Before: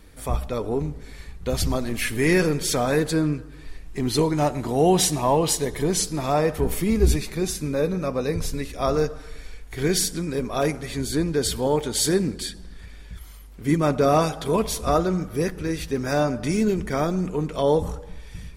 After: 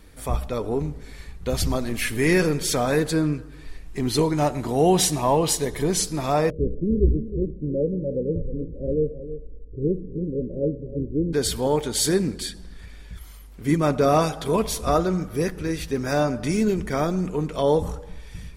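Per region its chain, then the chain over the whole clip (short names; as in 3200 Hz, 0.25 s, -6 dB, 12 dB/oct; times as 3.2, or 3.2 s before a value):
6.5–11.33 Chebyshev low-pass 570 Hz, order 8 + echo 0.315 s -12 dB
whole clip: dry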